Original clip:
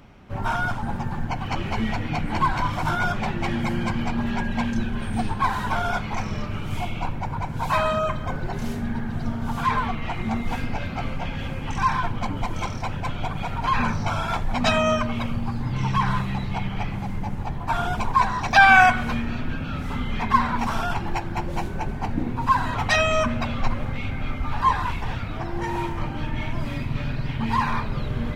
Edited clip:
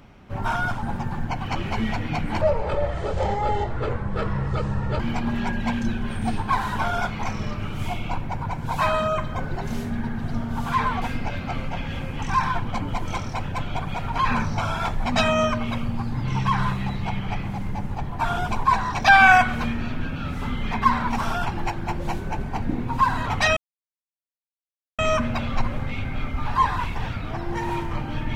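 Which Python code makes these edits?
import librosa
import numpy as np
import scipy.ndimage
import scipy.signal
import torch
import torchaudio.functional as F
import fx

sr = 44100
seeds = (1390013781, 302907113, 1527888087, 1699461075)

y = fx.edit(x, sr, fx.speed_span(start_s=2.41, length_s=1.5, speed=0.58),
    fx.cut(start_s=9.93, length_s=0.57),
    fx.insert_silence(at_s=23.05, length_s=1.42), tone=tone)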